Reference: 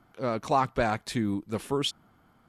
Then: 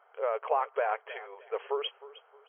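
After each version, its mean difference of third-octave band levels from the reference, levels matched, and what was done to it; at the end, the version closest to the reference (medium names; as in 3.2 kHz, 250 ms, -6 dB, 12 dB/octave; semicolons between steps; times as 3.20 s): 16.0 dB: treble shelf 2.5 kHz -10.5 dB; compression, threshold -28 dBFS, peak gain reduction 8 dB; brick-wall FIR band-pass 400–3300 Hz; feedback delay 311 ms, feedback 30%, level -17.5 dB; trim +4.5 dB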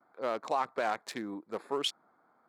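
5.5 dB: local Wiener filter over 15 samples; high-pass 470 Hz 12 dB/octave; gate with hold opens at -59 dBFS; peak limiter -19.5 dBFS, peak gain reduction 6.5 dB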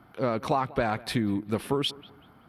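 3.5 dB: high-pass 43 Hz; peaking EQ 7 kHz -13.5 dB 0.6 oct; compression 4:1, threshold -30 dBFS, peak gain reduction 10 dB; on a send: bucket-brigade echo 190 ms, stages 4096, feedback 32%, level -21 dB; on the sum: trim +6.5 dB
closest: third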